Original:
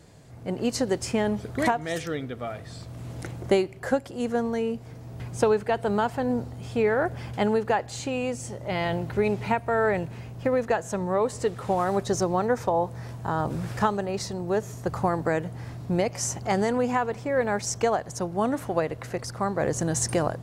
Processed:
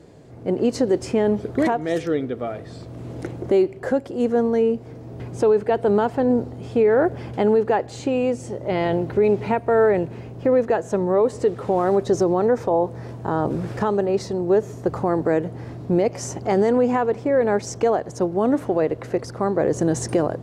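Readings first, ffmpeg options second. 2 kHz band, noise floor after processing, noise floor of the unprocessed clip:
-0.5 dB, -38 dBFS, -42 dBFS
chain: -af "equalizer=f=370:w=0.85:g=11,alimiter=limit=0.316:level=0:latency=1:release=24,highshelf=f=8000:g=-9.5"

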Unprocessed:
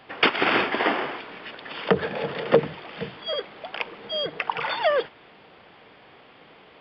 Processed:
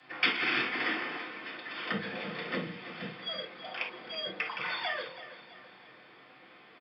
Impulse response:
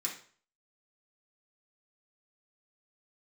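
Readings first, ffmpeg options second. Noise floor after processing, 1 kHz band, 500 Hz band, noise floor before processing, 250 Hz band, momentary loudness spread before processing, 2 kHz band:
-56 dBFS, -11.5 dB, -16.5 dB, -52 dBFS, -9.0 dB, 15 LU, -5.0 dB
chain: -filter_complex "[0:a]bandreject=f=45.7:t=h:w=4,bandreject=f=91.4:t=h:w=4,bandreject=f=137.1:t=h:w=4,bandreject=f=182.8:t=h:w=4,bandreject=f=228.5:t=h:w=4,bandreject=f=274.2:t=h:w=4,bandreject=f=319.9:t=h:w=4,bandreject=f=365.6:t=h:w=4,bandreject=f=411.3:t=h:w=4,bandreject=f=457:t=h:w=4,bandreject=f=502.7:t=h:w=4,bandreject=f=548.4:t=h:w=4,bandreject=f=594.1:t=h:w=4,bandreject=f=639.8:t=h:w=4,bandreject=f=685.5:t=h:w=4,bandreject=f=731.2:t=h:w=4,bandreject=f=776.9:t=h:w=4,bandreject=f=822.6:t=h:w=4,bandreject=f=868.3:t=h:w=4,bandreject=f=914:t=h:w=4,bandreject=f=959.7:t=h:w=4,bandreject=f=1005.4:t=h:w=4,bandreject=f=1051.1:t=h:w=4,bandreject=f=1096.8:t=h:w=4,bandreject=f=1142.5:t=h:w=4,bandreject=f=1188.2:t=h:w=4,bandreject=f=1233.9:t=h:w=4,bandreject=f=1279.6:t=h:w=4,bandreject=f=1325.3:t=h:w=4,acrossover=split=240|1800[s0][s1][s2];[s1]acompressor=threshold=0.0251:ratio=6[s3];[s0][s3][s2]amix=inputs=3:normalize=0,afreqshift=19,aecho=1:1:329|658|987|1316:0.2|0.0938|0.0441|0.0207[s4];[1:a]atrim=start_sample=2205,atrim=end_sample=3528[s5];[s4][s5]afir=irnorm=-1:irlink=0,volume=0.531"

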